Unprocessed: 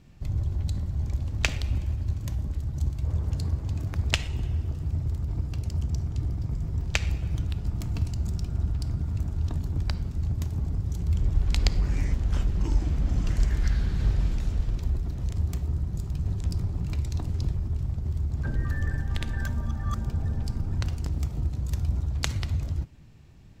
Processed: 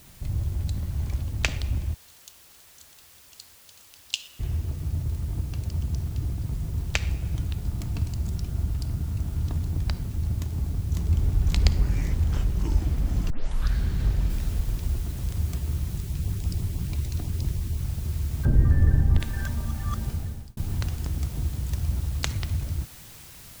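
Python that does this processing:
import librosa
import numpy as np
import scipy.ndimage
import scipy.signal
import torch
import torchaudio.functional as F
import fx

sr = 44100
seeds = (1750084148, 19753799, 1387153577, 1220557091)

y = fx.peak_eq(x, sr, hz=2300.0, db=6.0, octaves=2.5, at=(0.82, 1.22))
y = fx.ellip_highpass(y, sr, hz=2800.0, order=4, stop_db=40, at=(1.93, 4.39), fade=0.02)
y = fx.lowpass(y, sr, hz=7100.0, slope=12, at=(5.64, 6.55))
y = fx.echo_throw(y, sr, start_s=8.85, length_s=0.61, ms=470, feedback_pct=70, wet_db=-7.0)
y = fx.echo_throw(y, sr, start_s=10.37, length_s=0.9, ms=550, feedback_pct=65, wet_db=-0.5)
y = fx.noise_floor_step(y, sr, seeds[0], at_s=14.3, before_db=-53, after_db=-47, tilt_db=0.0)
y = fx.filter_lfo_notch(y, sr, shape='saw_up', hz=6.1, low_hz=490.0, high_hz=1800.0, q=2.1, at=(15.97, 17.8))
y = fx.tilt_shelf(y, sr, db=9.0, hz=1100.0, at=(18.45, 19.2))
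y = fx.edit(y, sr, fx.tape_start(start_s=13.3, length_s=0.44),
    fx.fade_out_span(start_s=20.08, length_s=0.49), tone=tone)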